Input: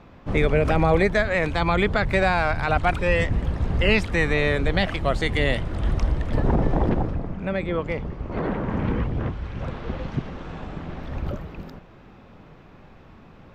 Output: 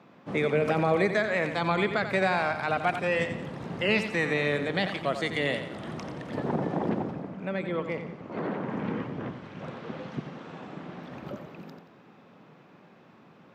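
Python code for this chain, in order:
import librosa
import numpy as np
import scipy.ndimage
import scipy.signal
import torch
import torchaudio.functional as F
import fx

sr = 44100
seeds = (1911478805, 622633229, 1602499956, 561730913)

y = scipy.signal.sosfilt(scipy.signal.butter(4, 150.0, 'highpass', fs=sr, output='sos'), x)
y = fx.echo_feedback(y, sr, ms=89, feedback_pct=43, wet_db=-9.5)
y = y * librosa.db_to_amplitude(-5.0)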